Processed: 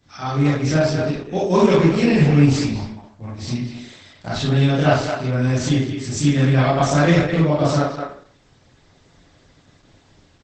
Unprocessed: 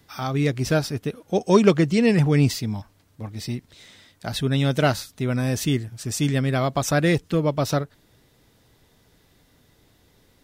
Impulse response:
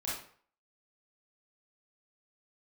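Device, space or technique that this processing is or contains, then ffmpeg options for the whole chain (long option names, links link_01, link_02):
speakerphone in a meeting room: -filter_complex "[1:a]atrim=start_sample=2205[link_01];[0:a][link_01]afir=irnorm=-1:irlink=0,asplit=2[link_02][link_03];[link_03]adelay=210,highpass=300,lowpass=3400,asoftclip=type=hard:threshold=-11dB,volume=-6dB[link_04];[link_02][link_04]amix=inputs=2:normalize=0,dynaudnorm=framelen=540:gausssize=3:maxgain=4dB" -ar 48000 -c:a libopus -b:a 12k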